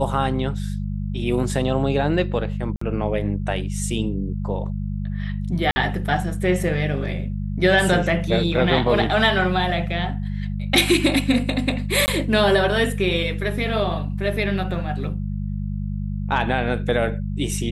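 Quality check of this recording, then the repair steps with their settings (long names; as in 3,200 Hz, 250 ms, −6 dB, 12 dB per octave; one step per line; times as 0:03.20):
mains hum 50 Hz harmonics 4 −26 dBFS
0:02.76–0:02.81: drop-out 54 ms
0:05.71–0:05.76: drop-out 50 ms
0:12.06–0:12.08: drop-out 19 ms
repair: hum removal 50 Hz, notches 4
repair the gap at 0:02.76, 54 ms
repair the gap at 0:05.71, 50 ms
repair the gap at 0:12.06, 19 ms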